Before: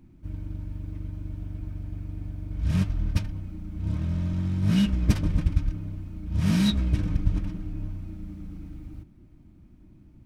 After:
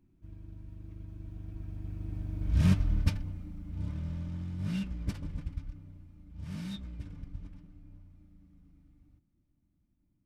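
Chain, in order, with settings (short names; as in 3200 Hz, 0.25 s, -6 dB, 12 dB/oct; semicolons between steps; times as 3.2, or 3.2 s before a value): Doppler pass-by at 2.61, 15 m/s, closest 8.1 m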